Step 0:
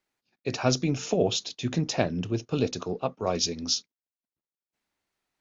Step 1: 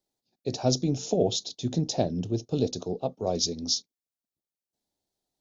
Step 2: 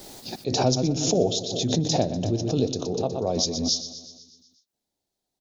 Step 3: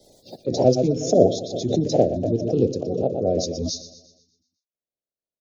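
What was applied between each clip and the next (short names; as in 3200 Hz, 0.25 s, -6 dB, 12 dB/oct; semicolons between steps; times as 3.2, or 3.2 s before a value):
band shelf 1700 Hz -15 dB
on a send: feedback echo 0.122 s, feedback 59%, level -12 dB; on the sum: backwards sustainer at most 43 dB/s; gain +1.5 dB
bin magnitudes rounded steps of 30 dB; resonant low shelf 770 Hz +8.5 dB, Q 3; three-band expander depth 40%; gain -6.5 dB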